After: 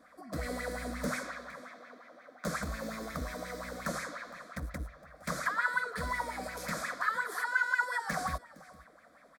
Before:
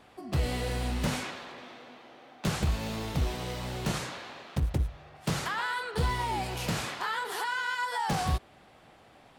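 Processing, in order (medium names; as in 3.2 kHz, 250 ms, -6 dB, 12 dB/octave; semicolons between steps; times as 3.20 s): high-pass 87 Hz 6 dB/octave; peaking EQ 340 Hz -6 dB 1.3 oct; static phaser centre 570 Hz, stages 8; delay 462 ms -20.5 dB; sweeping bell 5.6 Hz 300–2500 Hz +14 dB; trim -2.5 dB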